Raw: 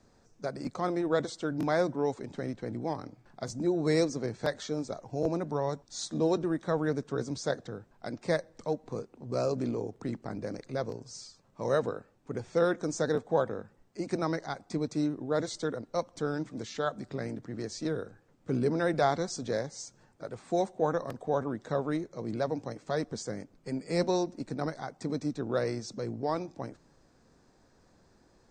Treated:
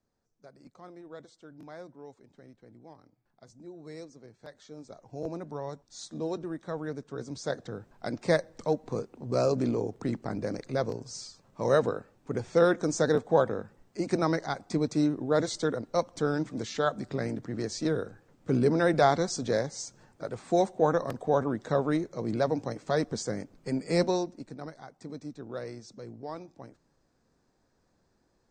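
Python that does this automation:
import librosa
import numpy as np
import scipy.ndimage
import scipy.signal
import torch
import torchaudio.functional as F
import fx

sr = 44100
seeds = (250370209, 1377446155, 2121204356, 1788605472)

y = fx.gain(x, sr, db=fx.line((4.43, -17.5), (5.16, -6.0), (7.12, -6.0), (7.91, 4.0), (23.94, 4.0), (24.6, -8.0)))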